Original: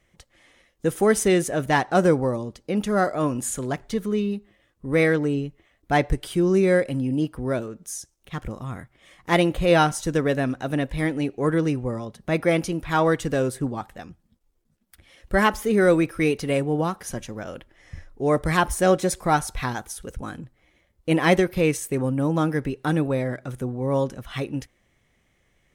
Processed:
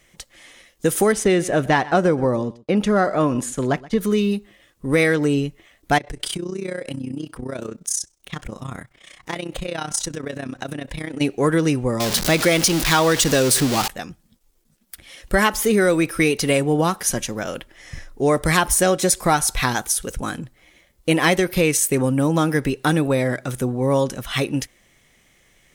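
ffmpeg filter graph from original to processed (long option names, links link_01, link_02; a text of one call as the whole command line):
ffmpeg -i in.wav -filter_complex "[0:a]asettb=1/sr,asplit=3[link_01][link_02][link_03];[link_01]atrim=end=1.124[link_04];[link_02]atrim=start=1.12:end=4.01,asetpts=PTS-STARTPTS,afade=type=in:duration=0.004:curve=qsin,afade=type=out:start_time=2.886:duration=0.004:curve=qsin,aemphasis=mode=reproduction:type=75fm,agate=range=-33dB:threshold=-35dB:ratio=3:release=100:detection=peak,aecho=1:1:124:0.0841,atrim=end_sample=127449[link_05];[link_03]atrim=start=4.006[link_06];[link_04][link_05]acrossfade=duration=0.004:curve1=hsin:curve2=qsin[link_07];[link_07][link_06]acrossfade=duration=0.004:curve1=qsin:curve2=hsin,asettb=1/sr,asplit=3[link_08][link_09][link_10];[link_08]atrim=end=5.984[link_11];[link_09]atrim=start=5.98:end=11.21,asetpts=PTS-STARTPTS,afade=type=in:duration=0.004:curve=qsin,afade=type=out:start_time=5.226:duration=0.004:curve=qsin,equalizer=frequency=13000:width_type=o:width=0.28:gain=-15,acompressor=threshold=-28dB:ratio=10:attack=3.2:release=140:knee=1:detection=peak,tremolo=f=31:d=0.824[link_12];[link_10]atrim=start=11.206[link_13];[link_11][link_12]acrossfade=duration=0.004:curve1=hsin:curve2=qsin[link_14];[link_14][link_13]acrossfade=duration=0.004:curve1=qsin:curve2=hsin,asettb=1/sr,asplit=3[link_15][link_16][link_17];[link_15]atrim=end=12.004[link_18];[link_16]atrim=start=12:end=13.88,asetpts=PTS-STARTPTS,afade=type=in:duration=0.004:curve=qsin,afade=type=out:start_time=1.876:duration=0.004:curve=qsin,aeval=exprs='val(0)+0.5*0.0398*sgn(val(0))':channel_layout=same,equalizer=frequency=4600:width_type=o:width=1.4:gain=5.5[link_19];[link_17]atrim=start=13.876[link_20];[link_18][link_19]acrossfade=duration=0.004:curve1=hsin:curve2=qsin[link_21];[link_21][link_20]acrossfade=duration=0.004:curve1=qsin:curve2=hsin,highshelf=frequency=2700:gain=9.5,acompressor=threshold=-20dB:ratio=5,equalizer=frequency=78:width_type=o:width=0.76:gain=-7.5,volume=6.5dB" out.wav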